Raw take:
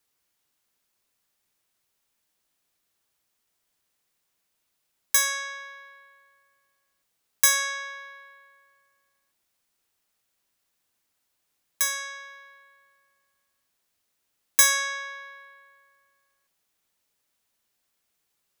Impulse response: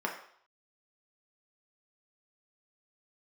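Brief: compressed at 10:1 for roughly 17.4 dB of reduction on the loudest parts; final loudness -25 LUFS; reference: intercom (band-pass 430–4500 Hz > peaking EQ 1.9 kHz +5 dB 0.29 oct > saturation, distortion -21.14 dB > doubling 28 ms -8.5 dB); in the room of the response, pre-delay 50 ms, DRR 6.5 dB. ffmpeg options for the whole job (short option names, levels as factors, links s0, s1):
-filter_complex "[0:a]acompressor=threshold=0.0251:ratio=10,asplit=2[s0][s1];[1:a]atrim=start_sample=2205,adelay=50[s2];[s1][s2]afir=irnorm=-1:irlink=0,volume=0.211[s3];[s0][s3]amix=inputs=2:normalize=0,highpass=430,lowpass=4500,equalizer=f=1900:t=o:w=0.29:g=5,asoftclip=threshold=0.0376,asplit=2[s4][s5];[s5]adelay=28,volume=0.376[s6];[s4][s6]amix=inputs=2:normalize=0,volume=5.62"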